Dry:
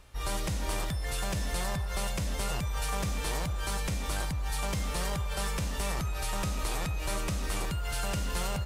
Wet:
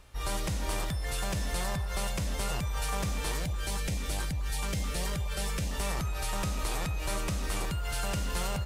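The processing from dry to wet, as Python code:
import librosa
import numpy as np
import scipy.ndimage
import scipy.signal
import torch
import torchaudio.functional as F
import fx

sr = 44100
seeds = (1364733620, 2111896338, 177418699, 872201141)

y = fx.filter_lfo_notch(x, sr, shape='saw_up', hz=4.6, low_hz=580.0, high_hz=1600.0, q=1.6, at=(3.32, 5.72))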